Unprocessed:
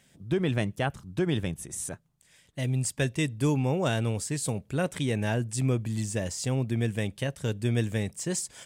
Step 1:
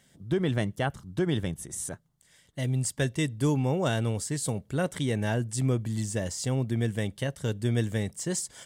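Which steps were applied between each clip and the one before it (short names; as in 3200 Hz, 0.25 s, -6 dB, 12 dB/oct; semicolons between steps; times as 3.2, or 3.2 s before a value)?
notch 2500 Hz, Q 6.8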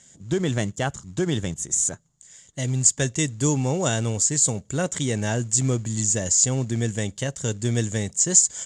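in parallel at -8 dB: short-mantissa float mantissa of 2-bit; on the sum: synth low-pass 7000 Hz, resonance Q 11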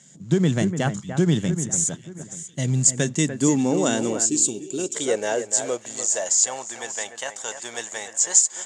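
echo with dull and thin repeats by turns 0.294 s, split 2300 Hz, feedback 55%, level -9 dB; spectral gain 4.26–4.95, 420–2300 Hz -16 dB; high-pass sweep 160 Hz -> 840 Hz, 2.74–6.66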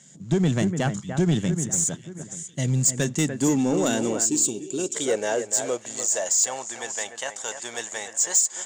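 soft clip -13 dBFS, distortion -15 dB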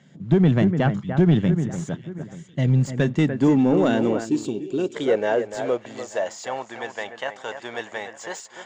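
air absorption 340 m; gain +5 dB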